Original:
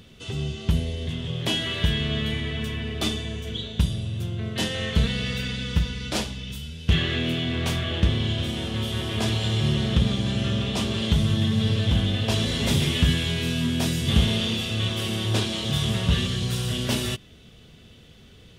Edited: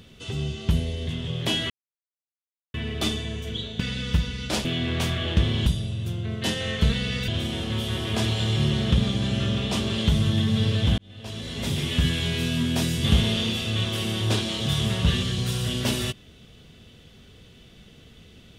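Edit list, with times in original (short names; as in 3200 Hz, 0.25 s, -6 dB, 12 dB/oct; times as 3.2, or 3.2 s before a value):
1.7–2.74 mute
3.8–5.42 move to 8.32
6.27–7.31 cut
12.02–13.34 fade in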